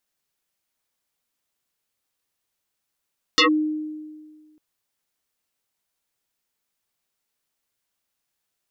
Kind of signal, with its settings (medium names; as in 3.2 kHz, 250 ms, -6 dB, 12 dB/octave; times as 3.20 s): FM tone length 1.20 s, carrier 307 Hz, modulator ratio 2.58, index 6.9, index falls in 0.11 s linear, decay 1.69 s, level -11.5 dB